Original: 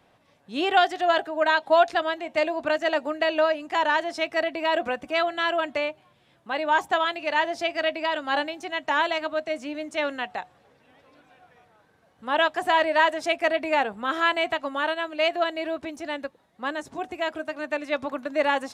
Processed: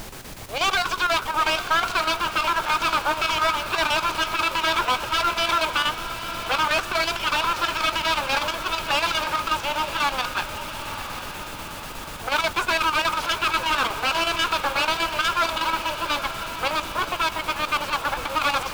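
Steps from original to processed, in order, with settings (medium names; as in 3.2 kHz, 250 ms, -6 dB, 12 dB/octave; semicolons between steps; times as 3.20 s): full-wave rectifier; high-pass 520 Hz 12 dB/octave; peaking EQ 1.9 kHz -12.5 dB 0.27 oct; peak limiter -23.5 dBFS, peak gain reduction 11 dB; overdrive pedal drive 18 dB, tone 3.5 kHz, clips at -17.5 dBFS; level-controlled noise filter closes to 980 Hz, open at -24 dBFS; added noise pink -43 dBFS; square tremolo 8.2 Hz, depth 60%, duty 75%; echo that smears into a reverb 947 ms, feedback 59%, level -10 dB; trim +6 dB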